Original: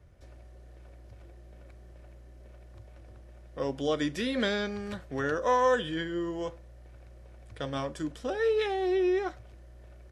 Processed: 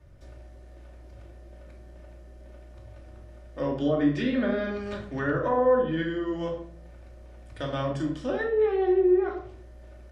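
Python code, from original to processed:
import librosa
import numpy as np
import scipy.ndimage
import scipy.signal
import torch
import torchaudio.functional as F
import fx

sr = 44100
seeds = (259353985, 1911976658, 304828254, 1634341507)

y = fx.env_lowpass_down(x, sr, base_hz=900.0, full_db=-23.0)
y = fx.room_shoebox(y, sr, seeds[0], volume_m3=780.0, walls='furnished', distance_m=2.6)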